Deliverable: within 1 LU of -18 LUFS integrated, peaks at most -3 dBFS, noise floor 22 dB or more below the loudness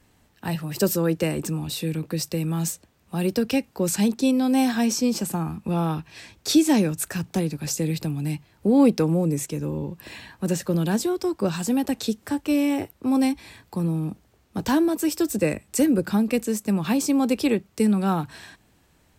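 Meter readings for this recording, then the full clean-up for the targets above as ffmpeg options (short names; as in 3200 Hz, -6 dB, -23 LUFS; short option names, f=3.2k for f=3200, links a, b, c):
loudness -24.0 LUFS; peak -8.0 dBFS; loudness target -18.0 LUFS
-> -af "volume=6dB,alimiter=limit=-3dB:level=0:latency=1"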